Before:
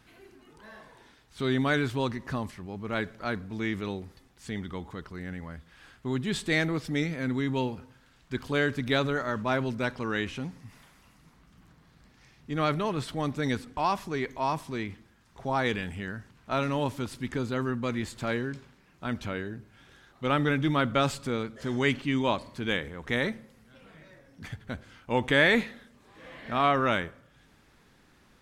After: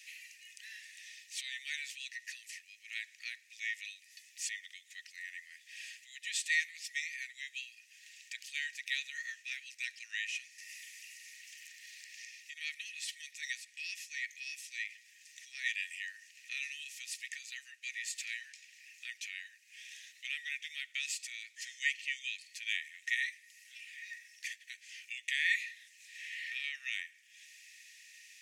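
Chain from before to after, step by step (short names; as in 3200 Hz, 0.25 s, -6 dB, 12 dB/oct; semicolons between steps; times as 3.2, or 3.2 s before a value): compressor 2:1, threshold -47 dBFS, peak gain reduction 16 dB; rippled Chebyshev high-pass 1800 Hz, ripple 9 dB; 10.58–12.61 three-band squash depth 100%; gain +16 dB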